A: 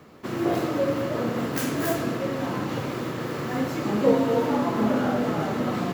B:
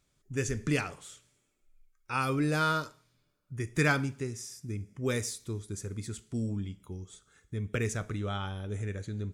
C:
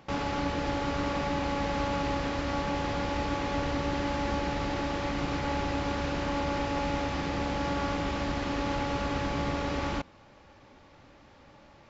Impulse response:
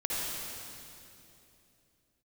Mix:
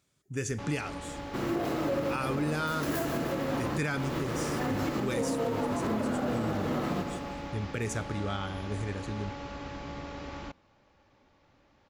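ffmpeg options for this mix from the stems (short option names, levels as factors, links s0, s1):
-filter_complex "[0:a]adelay=1100,volume=0.75,asplit=2[s0][s1];[s1]volume=0.335[s2];[1:a]highpass=86,volume=1.12,asplit=2[s3][s4];[2:a]adelay=500,volume=0.335[s5];[s4]apad=whole_len=310376[s6];[s0][s6]sidechaincompress=threshold=0.0251:ratio=8:attack=16:release=160[s7];[s2]aecho=0:1:155|310|465|620|775|930|1085|1240:1|0.55|0.303|0.166|0.0915|0.0503|0.0277|0.0152[s8];[s7][s3][s5][s8]amix=inputs=4:normalize=0,alimiter=limit=0.0841:level=0:latency=1:release=102"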